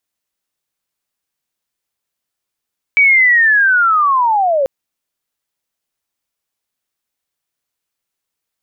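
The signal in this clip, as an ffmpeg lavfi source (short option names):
-f lavfi -i "aevalsrc='pow(10,(-6-5*t/1.69)/20)*sin(2*PI*(2300*t-1780*t*t/(2*1.69)))':d=1.69:s=44100"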